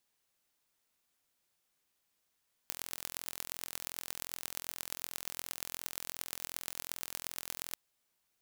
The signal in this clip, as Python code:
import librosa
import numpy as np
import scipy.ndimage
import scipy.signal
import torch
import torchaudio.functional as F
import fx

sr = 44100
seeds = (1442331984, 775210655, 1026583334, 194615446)

y = fx.impulse_train(sr, length_s=5.05, per_s=42.7, accent_every=5, level_db=-9.0)